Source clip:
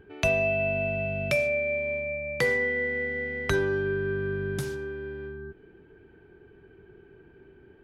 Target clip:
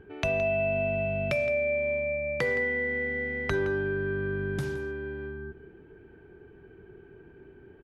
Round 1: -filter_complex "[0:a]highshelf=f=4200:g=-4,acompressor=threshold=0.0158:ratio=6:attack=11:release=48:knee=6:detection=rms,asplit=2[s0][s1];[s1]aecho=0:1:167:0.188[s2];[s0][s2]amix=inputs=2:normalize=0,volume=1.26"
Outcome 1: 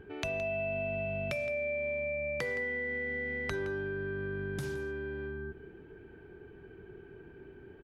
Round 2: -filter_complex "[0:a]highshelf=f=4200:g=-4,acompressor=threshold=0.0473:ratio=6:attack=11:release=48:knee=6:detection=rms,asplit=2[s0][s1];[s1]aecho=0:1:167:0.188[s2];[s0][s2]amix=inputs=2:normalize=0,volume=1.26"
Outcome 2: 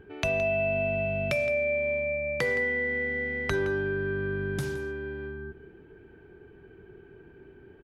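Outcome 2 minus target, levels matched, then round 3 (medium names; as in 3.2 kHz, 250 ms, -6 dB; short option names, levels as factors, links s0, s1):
8 kHz band +4.5 dB
-filter_complex "[0:a]highshelf=f=4200:g=-11,acompressor=threshold=0.0473:ratio=6:attack=11:release=48:knee=6:detection=rms,asplit=2[s0][s1];[s1]aecho=0:1:167:0.188[s2];[s0][s2]amix=inputs=2:normalize=0,volume=1.26"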